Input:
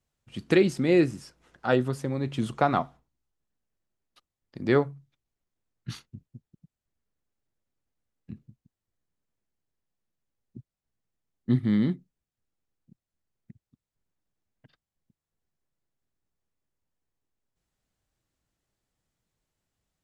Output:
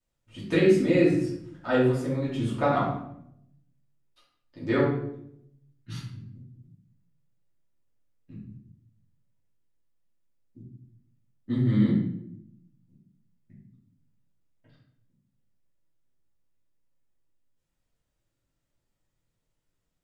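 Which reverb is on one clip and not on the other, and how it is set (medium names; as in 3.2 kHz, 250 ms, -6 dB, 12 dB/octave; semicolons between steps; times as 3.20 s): simulated room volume 160 m³, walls mixed, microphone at 2.7 m; trim -10 dB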